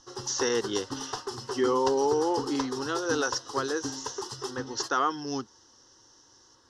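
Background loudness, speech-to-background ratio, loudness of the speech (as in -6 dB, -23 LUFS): -37.0 LUFS, 7.5 dB, -29.5 LUFS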